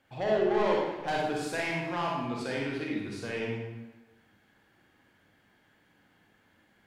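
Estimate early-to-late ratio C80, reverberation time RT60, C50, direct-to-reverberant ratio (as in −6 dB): 2.5 dB, 1.1 s, −1.0 dB, −3.0 dB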